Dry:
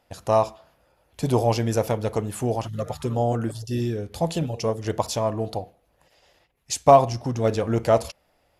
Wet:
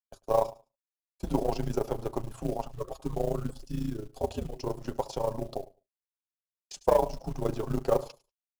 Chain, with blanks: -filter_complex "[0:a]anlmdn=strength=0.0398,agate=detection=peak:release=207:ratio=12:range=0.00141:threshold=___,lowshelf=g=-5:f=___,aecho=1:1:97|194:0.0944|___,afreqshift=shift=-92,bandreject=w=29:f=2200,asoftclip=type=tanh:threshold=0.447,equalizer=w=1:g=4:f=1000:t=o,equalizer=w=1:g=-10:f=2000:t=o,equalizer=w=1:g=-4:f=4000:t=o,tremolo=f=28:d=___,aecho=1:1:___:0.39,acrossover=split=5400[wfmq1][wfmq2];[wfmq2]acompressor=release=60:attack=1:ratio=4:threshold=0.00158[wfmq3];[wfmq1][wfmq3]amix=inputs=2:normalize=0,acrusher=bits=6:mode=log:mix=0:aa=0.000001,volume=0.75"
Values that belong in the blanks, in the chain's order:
0.0141, 250, 0.016, 0.788, 7.4